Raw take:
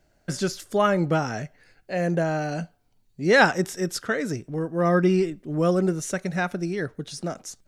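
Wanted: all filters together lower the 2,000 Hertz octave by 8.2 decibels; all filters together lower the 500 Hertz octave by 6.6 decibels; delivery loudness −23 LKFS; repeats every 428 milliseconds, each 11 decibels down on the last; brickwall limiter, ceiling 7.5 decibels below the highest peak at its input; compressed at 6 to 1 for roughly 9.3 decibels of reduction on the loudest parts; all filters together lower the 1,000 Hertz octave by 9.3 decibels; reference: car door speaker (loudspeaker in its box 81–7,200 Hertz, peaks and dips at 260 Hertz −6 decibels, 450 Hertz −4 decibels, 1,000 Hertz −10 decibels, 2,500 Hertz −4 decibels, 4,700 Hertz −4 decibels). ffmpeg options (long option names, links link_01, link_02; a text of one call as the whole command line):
ffmpeg -i in.wav -af "equalizer=frequency=500:width_type=o:gain=-4,equalizer=frequency=1000:width_type=o:gain=-6,equalizer=frequency=2000:width_type=o:gain=-6.5,acompressor=threshold=-28dB:ratio=6,alimiter=level_in=3dB:limit=-24dB:level=0:latency=1,volume=-3dB,highpass=81,equalizer=frequency=260:width_type=q:width=4:gain=-6,equalizer=frequency=450:width_type=q:width=4:gain=-4,equalizer=frequency=1000:width_type=q:width=4:gain=-10,equalizer=frequency=2500:width_type=q:width=4:gain=-4,equalizer=frequency=4700:width_type=q:width=4:gain=-4,lowpass=frequency=7200:width=0.5412,lowpass=frequency=7200:width=1.3066,aecho=1:1:428|856|1284:0.282|0.0789|0.0221,volume=14.5dB" out.wav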